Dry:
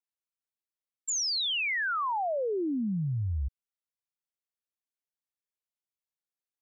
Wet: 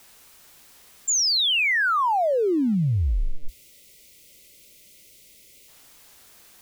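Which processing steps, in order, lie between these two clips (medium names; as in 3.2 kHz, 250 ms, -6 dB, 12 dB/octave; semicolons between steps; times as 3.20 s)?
jump at every zero crossing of -49.5 dBFS; time-frequency box 2.74–5.68 s, 700–2000 Hz -20 dB; frequency shift -74 Hz; trim +8 dB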